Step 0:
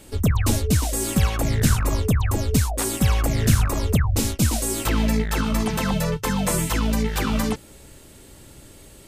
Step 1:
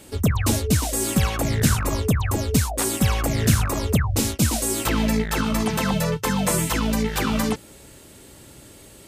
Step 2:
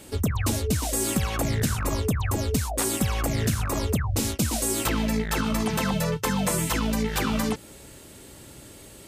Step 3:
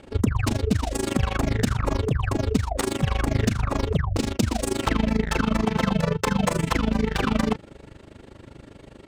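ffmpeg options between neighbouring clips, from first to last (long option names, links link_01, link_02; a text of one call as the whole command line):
ffmpeg -i in.wav -af "highpass=frequency=89:poles=1,volume=1.5dB" out.wav
ffmpeg -i in.wav -af "acompressor=threshold=-21dB:ratio=6" out.wav
ffmpeg -i in.wav -af "tremolo=f=25:d=0.889,adynamicsmooth=sensitivity=4:basefreq=2600,volume=6.5dB" out.wav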